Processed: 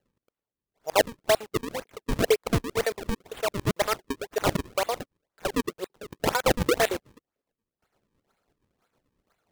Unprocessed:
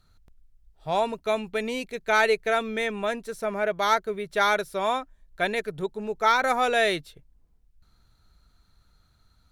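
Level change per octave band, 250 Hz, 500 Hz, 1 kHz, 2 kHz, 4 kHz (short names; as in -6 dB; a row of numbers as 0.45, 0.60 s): +2.5, -0.5, -6.0, -6.0, -0.5 dB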